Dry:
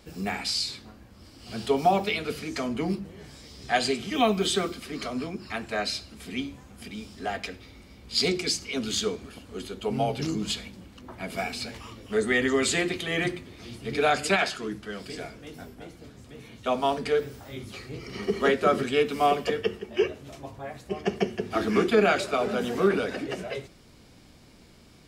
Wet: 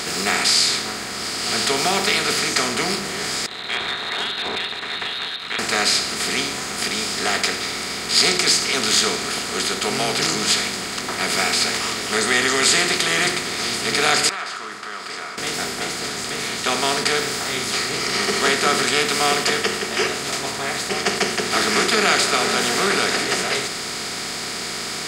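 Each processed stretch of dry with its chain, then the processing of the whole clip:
3.46–5.59 s: frequency inversion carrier 4 kHz + compression 2.5:1, threshold -41 dBFS + expander -39 dBFS
14.29–15.38 s: band-pass filter 1.2 kHz, Q 7.9 + compression 2:1, threshold -55 dBFS
whole clip: spectral levelling over time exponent 0.4; FFT filter 410 Hz 0 dB, 590 Hz -3 dB, 1.1 kHz +6 dB, 11 kHz +14 dB; trim -5 dB

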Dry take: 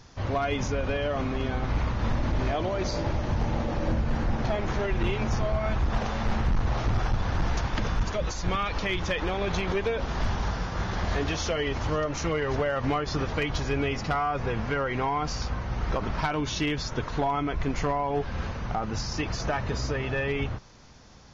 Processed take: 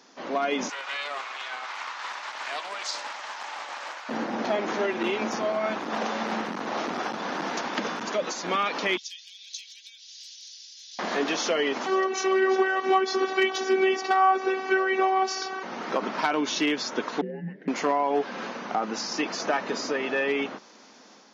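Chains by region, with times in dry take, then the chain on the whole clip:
0.69–4.09 s: high-pass 910 Hz 24 dB/octave + treble shelf 5.3 kHz +4 dB + loudspeaker Doppler distortion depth 0.21 ms
8.97–10.99 s: inverse Chebyshev high-pass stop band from 1.2 kHz, stop band 60 dB + comb 3.1 ms, depth 39%
11.86–15.63 s: comb 2.6 ms, depth 93% + robot voice 379 Hz
17.21–17.68 s: vowel filter u + peaking EQ 270 Hz +11 dB 0.3 oct + frequency shift -460 Hz
whole clip: steep high-pass 220 Hz 36 dB/octave; level rider gain up to 3.5 dB

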